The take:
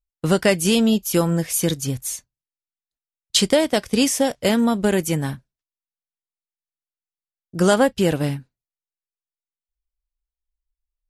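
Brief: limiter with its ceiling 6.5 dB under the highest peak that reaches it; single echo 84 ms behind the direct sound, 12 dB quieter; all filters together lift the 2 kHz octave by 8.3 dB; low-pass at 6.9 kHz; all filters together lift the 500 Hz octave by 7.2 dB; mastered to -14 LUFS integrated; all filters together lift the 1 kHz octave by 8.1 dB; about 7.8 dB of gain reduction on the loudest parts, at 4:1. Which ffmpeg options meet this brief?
-af "lowpass=6900,equalizer=f=500:t=o:g=6.5,equalizer=f=1000:t=o:g=6.5,equalizer=f=2000:t=o:g=8,acompressor=threshold=0.2:ratio=4,alimiter=limit=0.316:level=0:latency=1,aecho=1:1:84:0.251,volume=2.37"

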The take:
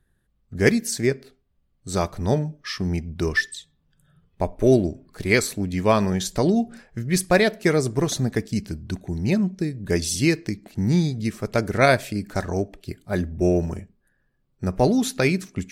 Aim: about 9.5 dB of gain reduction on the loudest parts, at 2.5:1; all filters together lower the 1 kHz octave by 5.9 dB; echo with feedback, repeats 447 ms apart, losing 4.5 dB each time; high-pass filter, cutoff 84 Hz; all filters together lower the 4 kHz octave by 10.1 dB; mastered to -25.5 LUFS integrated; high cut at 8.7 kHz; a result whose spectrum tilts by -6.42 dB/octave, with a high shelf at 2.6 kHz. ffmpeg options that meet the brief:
-af "highpass=84,lowpass=8700,equalizer=f=1000:t=o:g=-8,highshelf=f=2600:g=-6.5,equalizer=f=4000:t=o:g=-6,acompressor=threshold=0.0398:ratio=2.5,aecho=1:1:447|894|1341|1788|2235|2682|3129|3576|4023:0.596|0.357|0.214|0.129|0.0772|0.0463|0.0278|0.0167|0.01,volume=1.78"

